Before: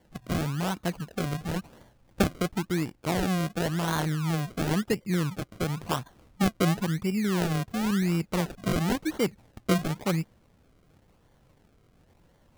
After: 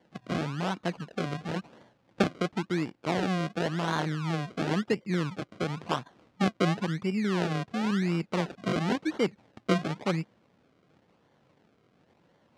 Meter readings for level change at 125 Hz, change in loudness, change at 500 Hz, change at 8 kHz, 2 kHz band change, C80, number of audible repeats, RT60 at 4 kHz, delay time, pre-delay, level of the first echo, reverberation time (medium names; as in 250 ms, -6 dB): -3.5 dB, -1.5 dB, 0.0 dB, -8.5 dB, 0.0 dB, no reverb, no echo, no reverb, no echo, no reverb, no echo, no reverb